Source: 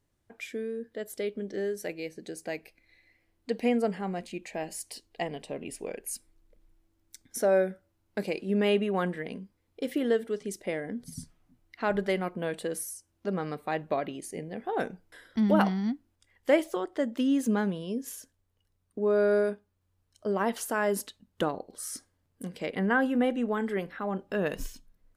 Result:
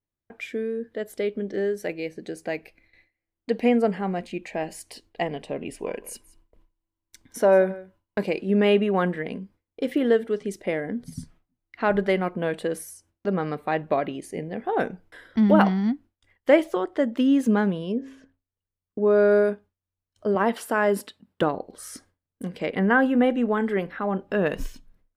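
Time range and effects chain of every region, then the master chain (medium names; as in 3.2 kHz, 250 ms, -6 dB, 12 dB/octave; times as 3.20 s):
5.77–8.25 s: small resonant body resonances 1/2.9 kHz, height 13 dB + delay 175 ms -19.5 dB
17.92–19.05 s: low-pass 2.4 kHz + de-hum 133.9 Hz, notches 6
20.35–21.42 s: high-pass 120 Hz + band-stop 6.4 kHz, Q 8.1
whole clip: gate with hold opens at -51 dBFS; tone controls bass 0 dB, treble -9 dB; trim +6 dB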